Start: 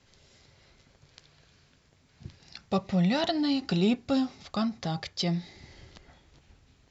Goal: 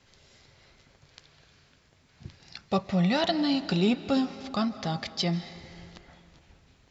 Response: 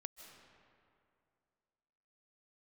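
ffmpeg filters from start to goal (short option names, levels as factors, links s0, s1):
-filter_complex "[0:a]asplit=2[s0][s1];[1:a]atrim=start_sample=2205,lowshelf=f=450:g=-9.5,highshelf=f=6200:g=-11[s2];[s1][s2]afir=irnorm=-1:irlink=0,volume=1.88[s3];[s0][s3]amix=inputs=2:normalize=0,volume=0.75"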